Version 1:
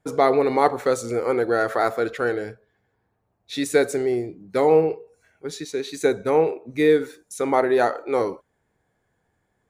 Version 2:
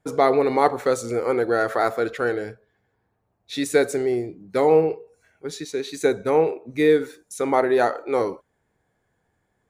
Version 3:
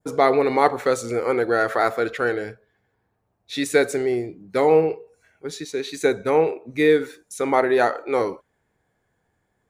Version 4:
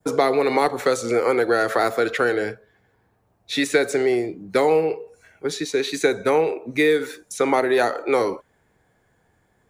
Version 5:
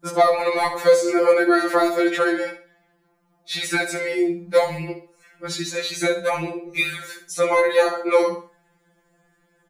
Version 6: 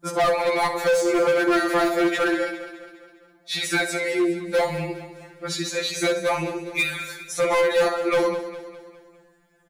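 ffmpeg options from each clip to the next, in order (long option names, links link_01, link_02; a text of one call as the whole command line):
ffmpeg -i in.wav -af anull out.wav
ffmpeg -i in.wav -af "adynamicequalizer=threshold=0.0126:dfrequency=2300:dqfactor=0.79:tfrequency=2300:tqfactor=0.79:attack=5:release=100:ratio=0.375:range=2:mode=boostabove:tftype=bell" out.wav
ffmpeg -i in.wav -filter_complex "[0:a]aeval=exprs='0.841*(cos(1*acos(clip(val(0)/0.841,-1,1)))-cos(1*PI/2))+0.0376*(cos(3*acos(clip(val(0)/0.841,-1,1)))-cos(3*PI/2))':channel_layout=same,acrossover=split=190|470|3300|6600[link_01][link_02][link_03][link_04][link_05];[link_01]acompressor=threshold=-50dB:ratio=4[link_06];[link_02]acompressor=threshold=-32dB:ratio=4[link_07];[link_03]acompressor=threshold=-29dB:ratio=4[link_08];[link_04]acompressor=threshold=-42dB:ratio=4[link_09];[link_05]acompressor=threshold=-47dB:ratio=4[link_10];[link_06][link_07][link_08][link_09][link_10]amix=inputs=5:normalize=0,volume=8.5dB" out.wav
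ffmpeg -i in.wav -af "aecho=1:1:64|128|192:0.282|0.0874|0.0271,afftfilt=real='re*2.83*eq(mod(b,8),0)':imag='im*2.83*eq(mod(b,8),0)':win_size=2048:overlap=0.75,volume=3.5dB" out.wav
ffmpeg -i in.wav -af "volume=16.5dB,asoftclip=hard,volume=-16.5dB,aecho=1:1:204|408|612|816|1020:0.224|0.112|0.056|0.028|0.014" out.wav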